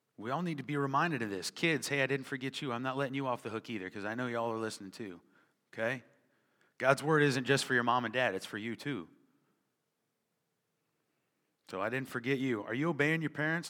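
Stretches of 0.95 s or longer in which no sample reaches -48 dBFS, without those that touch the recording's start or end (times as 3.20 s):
9.04–11.69 s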